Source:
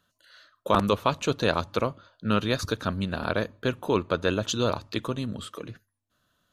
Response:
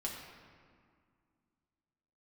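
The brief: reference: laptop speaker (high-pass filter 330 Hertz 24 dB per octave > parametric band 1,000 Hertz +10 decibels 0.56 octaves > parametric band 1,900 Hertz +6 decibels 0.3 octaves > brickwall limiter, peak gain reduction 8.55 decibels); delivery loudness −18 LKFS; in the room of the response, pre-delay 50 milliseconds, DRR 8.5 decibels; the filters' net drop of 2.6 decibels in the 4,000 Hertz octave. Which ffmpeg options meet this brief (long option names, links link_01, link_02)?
-filter_complex "[0:a]equalizer=frequency=4000:width_type=o:gain=-3.5,asplit=2[link_01][link_02];[1:a]atrim=start_sample=2205,adelay=50[link_03];[link_02][link_03]afir=irnorm=-1:irlink=0,volume=-9.5dB[link_04];[link_01][link_04]amix=inputs=2:normalize=0,highpass=frequency=330:width=0.5412,highpass=frequency=330:width=1.3066,equalizer=frequency=1000:width_type=o:width=0.56:gain=10,equalizer=frequency=1900:width_type=o:width=0.3:gain=6,volume=10dB,alimiter=limit=-2.5dB:level=0:latency=1"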